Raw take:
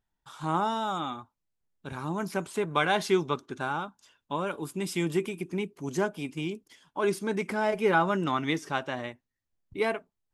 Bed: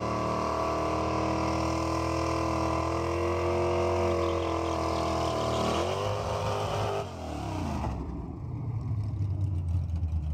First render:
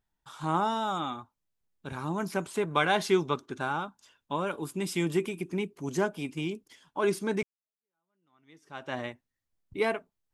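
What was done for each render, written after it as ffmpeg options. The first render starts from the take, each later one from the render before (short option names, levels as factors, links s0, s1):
-filter_complex "[0:a]asplit=2[s0][s1];[s0]atrim=end=7.43,asetpts=PTS-STARTPTS,afade=t=out:st=7.426:d=0.004:c=hsin[s2];[s1]atrim=start=7.43,asetpts=PTS-STARTPTS,afade=t=in:d=1.51:c=exp[s3];[s2][s3]concat=n=2:v=0:a=1"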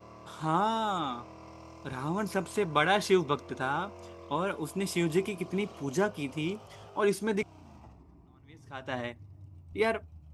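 -filter_complex "[1:a]volume=0.0944[s0];[0:a][s0]amix=inputs=2:normalize=0"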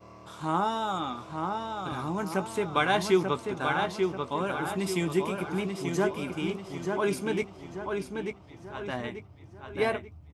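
-filter_complex "[0:a]asplit=2[s0][s1];[s1]adelay=16,volume=0.251[s2];[s0][s2]amix=inputs=2:normalize=0,asplit=2[s3][s4];[s4]adelay=888,lowpass=f=5000:p=1,volume=0.596,asplit=2[s5][s6];[s6]adelay=888,lowpass=f=5000:p=1,volume=0.44,asplit=2[s7][s8];[s8]adelay=888,lowpass=f=5000:p=1,volume=0.44,asplit=2[s9][s10];[s10]adelay=888,lowpass=f=5000:p=1,volume=0.44,asplit=2[s11][s12];[s12]adelay=888,lowpass=f=5000:p=1,volume=0.44[s13];[s3][s5][s7][s9][s11][s13]amix=inputs=6:normalize=0"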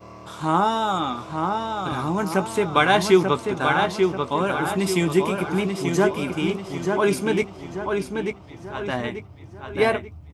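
-af "volume=2.37"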